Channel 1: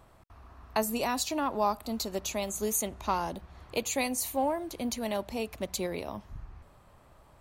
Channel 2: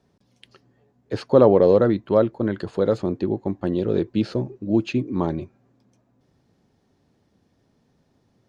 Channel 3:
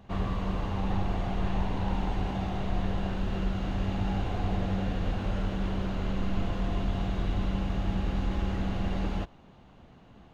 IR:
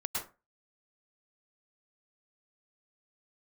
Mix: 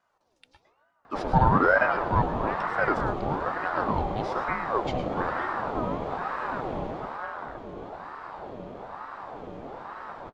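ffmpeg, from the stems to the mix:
-filter_complex "[0:a]lowpass=f=1.5k:w=0.5412,lowpass=f=1.5k:w=1.3066,adelay=1400,volume=-2.5dB[a];[1:a]aecho=1:1:2.2:0.49,volume=-8.5dB,asplit=2[b][c];[c]volume=-6.5dB[d];[2:a]equalizer=f=410:t=o:w=2.7:g=12,adelay=1050,volume=-5.5dB,afade=t=out:st=6.75:d=0.58:silence=0.398107,asplit=2[e][f];[f]volume=-19.5dB[g];[3:a]atrim=start_sample=2205[h];[d][g]amix=inputs=2:normalize=0[i];[i][h]afir=irnorm=-1:irlink=0[j];[a][b][e][j]amix=inputs=4:normalize=0,aeval=exprs='val(0)*sin(2*PI*740*n/s+740*0.5/1.1*sin(2*PI*1.1*n/s))':c=same"

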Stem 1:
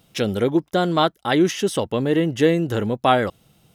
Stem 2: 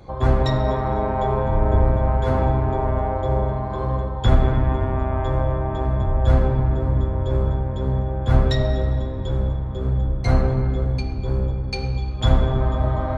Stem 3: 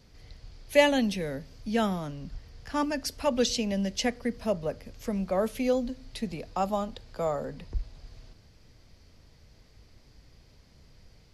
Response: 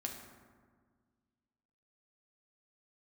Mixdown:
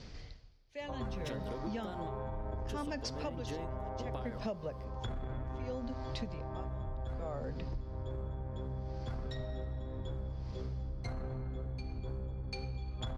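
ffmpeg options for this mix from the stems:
-filter_complex "[0:a]acompressor=threshold=-24dB:ratio=6,adelay=1100,volume=-7dB[a];[1:a]alimiter=limit=-12.5dB:level=0:latency=1:release=21,adelay=800,volume=-10.5dB[b];[2:a]lowpass=f=6.3k:w=0.5412,lowpass=f=6.3k:w=1.3066,acontrast=47,aeval=exprs='val(0)*pow(10,-31*(0.5-0.5*cos(2*PI*0.66*n/s))/20)':c=same,volume=2.5dB,asplit=2[c][d];[d]apad=whole_len=213528[e];[a][e]sidechaingate=range=-33dB:threshold=-47dB:ratio=16:detection=peak[f];[f][b][c]amix=inputs=3:normalize=0,acompressor=threshold=-36dB:ratio=8"

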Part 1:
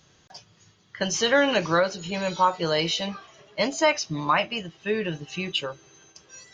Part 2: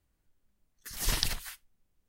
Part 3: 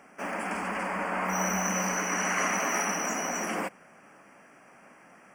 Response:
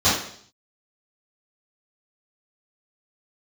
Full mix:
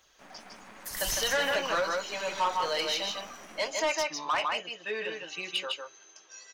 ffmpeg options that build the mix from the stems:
-filter_complex "[0:a]flanger=delay=0.1:depth=4.5:regen=-38:speed=1.3:shape=sinusoidal,highpass=580,volume=1dB,asplit=3[a][b][c];[b]volume=-4.5dB[d];[1:a]highshelf=f=3.6k:g=10.5,volume=-3.5dB[e];[2:a]aeval=exprs='0.178*(cos(1*acos(clip(val(0)/0.178,-1,1)))-cos(1*PI/2))+0.0447*(cos(6*acos(clip(val(0)/0.178,-1,1)))-cos(6*PI/2))+0.0178*(cos(8*acos(clip(val(0)/0.178,-1,1)))-cos(8*PI/2))':c=same,aeval=exprs='sgn(val(0))*max(abs(val(0))-0.00596,0)':c=same,volume=-17.5dB,asplit=2[f][g];[g]volume=-7dB[h];[c]apad=whole_len=92042[i];[e][i]sidechaincompress=threshold=-30dB:ratio=8:attack=16:release=776[j];[d][h]amix=inputs=2:normalize=0,aecho=0:1:155:1[k];[a][j][f][k]amix=inputs=4:normalize=0,asoftclip=type=tanh:threshold=-22dB"

